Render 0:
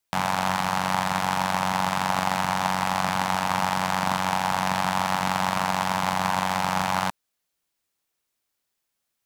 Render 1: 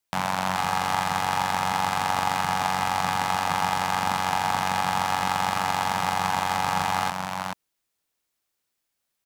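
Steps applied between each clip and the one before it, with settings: echo 0.431 s -4.5 dB; gain -1.5 dB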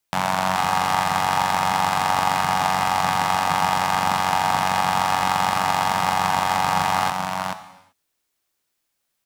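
non-linear reverb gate 0.41 s falling, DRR 10.5 dB; gain +3.5 dB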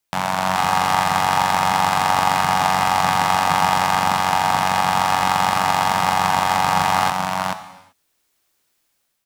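AGC gain up to 7.5 dB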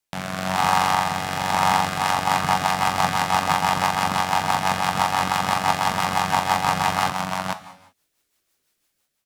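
rotary speaker horn 1 Hz, later 6 Hz, at 1.58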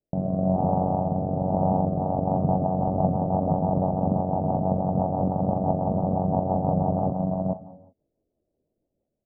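elliptic low-pass 630 Hz, stop band 70 dB; gain +7 dB

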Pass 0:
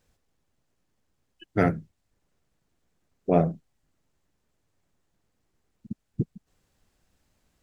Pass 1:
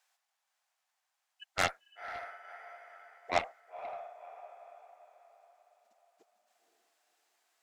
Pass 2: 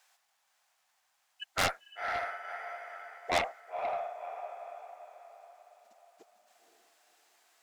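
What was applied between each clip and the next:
Chebyshev high-pass 730 Hz, order 4; diffused feedback echo 0.524 s, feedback 42%, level -8 dB; added harmonics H 7 -11 dB, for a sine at -16 dBFS
soft clip -29 dBFS, distortion -5 dB; gain +8.5 dB

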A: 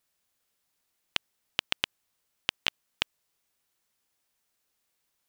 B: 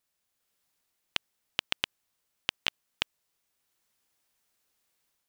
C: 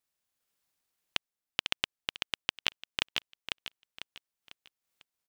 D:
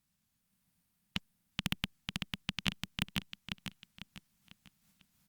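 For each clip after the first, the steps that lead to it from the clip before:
AGC gain up to 5 dB; gain -3.5 dB
on a send: feedback echo 0.498 s, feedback 37%, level -6.5 dB; on the sum: transient shaper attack +7 dB, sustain -10 dB; maximiser +0.5 dB; gain -5 dB
transient shaper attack -10 dB, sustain +9 dB; resonant low shelf 280 Hz +12.5 dB, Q 3; gain +3.5 dB; Opus 48 kbps 48000 Hz

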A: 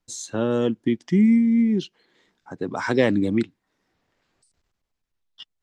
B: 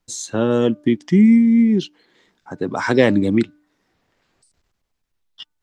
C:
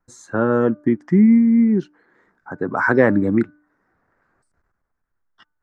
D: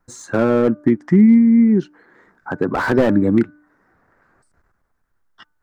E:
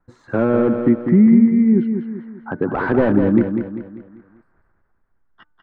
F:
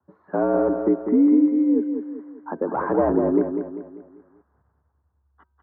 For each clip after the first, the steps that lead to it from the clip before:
de-hum 298.1 Hz, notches 5; gain +5 dB
resonant high shelf 2200 Hz -13 dB, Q 3; gain -1 dB
in parallel at +2 dB: compressor 12:1, threshold -24 dBFS, peak gain reduction 16 dB; on the sum: slew limiter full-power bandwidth 150 Hz
air absorption 450 m; on a send: feedback echo 0.197 s, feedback 43%, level -7 dB
frequency shift +69 Hz; synth low-pass 980 Hz, resonance Q 1.9; gain -6 dB

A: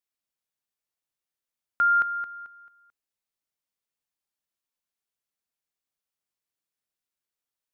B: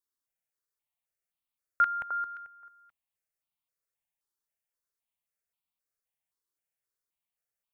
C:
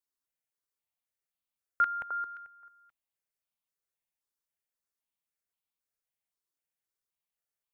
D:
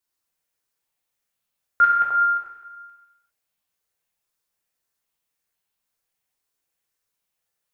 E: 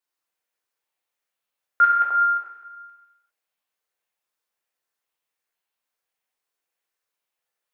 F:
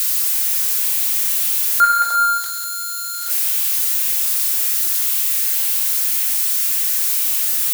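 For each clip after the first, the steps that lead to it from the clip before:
step phaser 3.8 Hz 660–1700 Hz
dynamic EQ 400 Hz, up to +5 dB, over -48 dBFS, Q 1; gain -2.5 dB
non-linear reverb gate 0.43 s falling, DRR -3 dB; gain +6 dB
tone controls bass -13 dB, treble -6 dB
switching spikes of -16.5 dBFS; gain +3 dB

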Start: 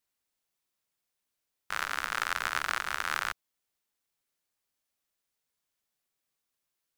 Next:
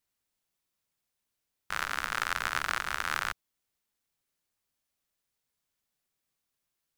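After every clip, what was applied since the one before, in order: tone controls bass +5 dB, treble 0 dB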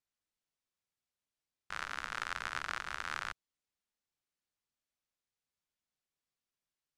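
LPF 7800 Hz 12 dB/oct; gain -7.5 dB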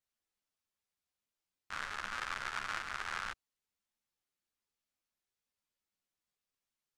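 ensemble effect; gain +3 dB

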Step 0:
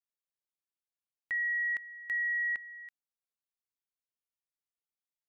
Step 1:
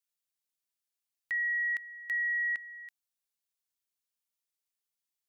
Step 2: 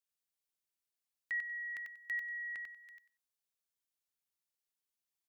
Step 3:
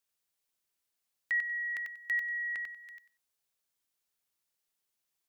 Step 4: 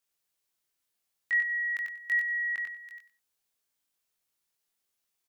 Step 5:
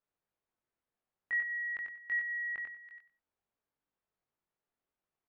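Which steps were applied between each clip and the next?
high shelf 2100 Hz +11.5 dB; gain -4.5 dB
feedback echo 94 ms, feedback 17%, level -4 dB; gain -4.5 dB
notches 50/100/150/200/250/300 Hz; gain +6.5 dB
doubler 21 ms -2 dB
Bessel low-pass 1100 Hz, order 2; gain +2 dB

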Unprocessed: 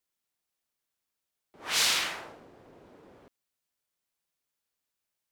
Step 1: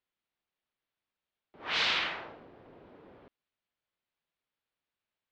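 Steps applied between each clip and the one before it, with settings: LPF 3800 Hz 24 dB/oct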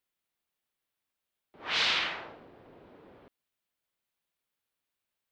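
high shelf 6600 Hz +9 dB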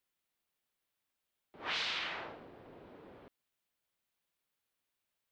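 compressor 6:1, threshold -34 dBFS, peak gain reduction 10 dB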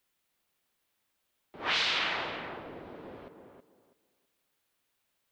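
tape echo 0.324 s, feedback 26%, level -5 dB, low-pass 1500 Hz; gain +7.5 dB

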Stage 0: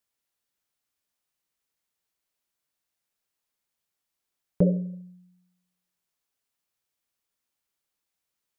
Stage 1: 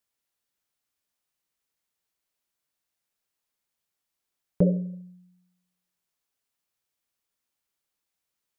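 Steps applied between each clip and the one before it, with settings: nothing audible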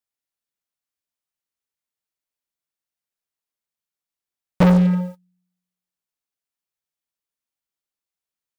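sample leveller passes 5; in parallel at -8.5 dB: overloaded stage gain 24 dB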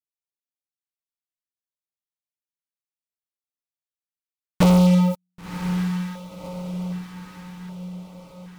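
sample leveller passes 5; diffused feedback echo 1.055 s, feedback 55%, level -9 dB; LFO notch square 0.65 Hz 580–1700 Hz; gain -3 dB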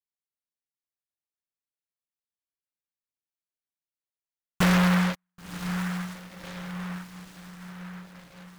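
noise-modulated delay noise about 1300 Hz, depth 0.33 ms; gain -6 dB

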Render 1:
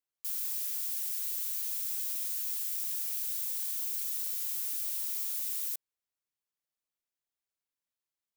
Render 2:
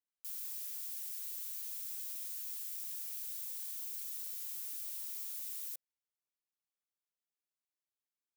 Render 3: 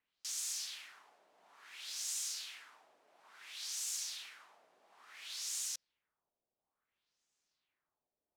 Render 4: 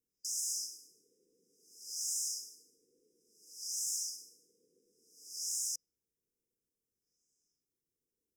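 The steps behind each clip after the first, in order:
HPF 150 Hz 24 dB/oct; notch 520 Hz, Q 12; gain -8 dB
LFO low-pass sine 0.58 Hz 600–7000 Hz; gain +9.5 dB
in parallel at -3 dB: soft clip -36.5 dBFS, distortion -15 dB; on the sum: brick-wall FIR band-stop 520–4900 Hz

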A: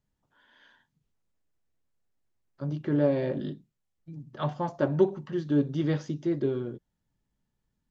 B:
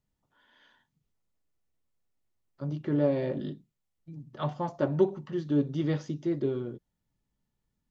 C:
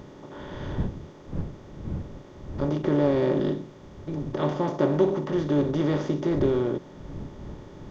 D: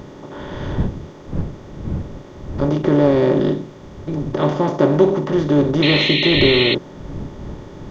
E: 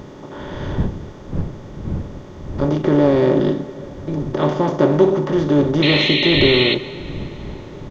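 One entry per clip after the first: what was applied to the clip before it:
notch 1600 Hz, Q 14; gain -1.5 dB
per-bin compression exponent 0.4; wind noise 160 Hz -38 dBFS
painted sound noise, 5.82–6.75, 1800–4300 Hz -27 dBFS; gain +8 dB
speakerphone echo 90 ms, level -22 dB; plate-style reverb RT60 4.9 s, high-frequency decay 0.6×, DRR 14.5 dB

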